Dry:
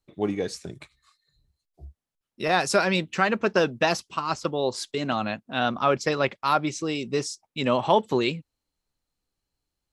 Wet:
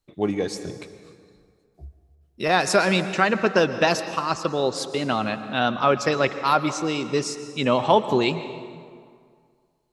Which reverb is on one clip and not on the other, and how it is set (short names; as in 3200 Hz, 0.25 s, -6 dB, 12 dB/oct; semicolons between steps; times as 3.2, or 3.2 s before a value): plate-style reverb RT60 2.1 s, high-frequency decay 0.65×, pre-delay 0.105 s, DRR 11 dB; gain +2.5 dB